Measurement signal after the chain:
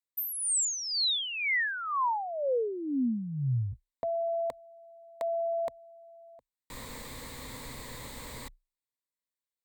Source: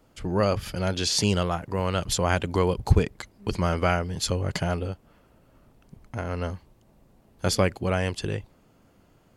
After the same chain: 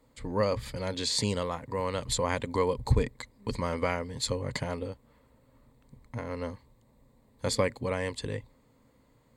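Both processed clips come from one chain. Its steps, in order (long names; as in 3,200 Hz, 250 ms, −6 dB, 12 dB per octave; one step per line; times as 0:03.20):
EQ curve with evenly spaced ripples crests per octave 1, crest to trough 10 dB
level −5.5 dB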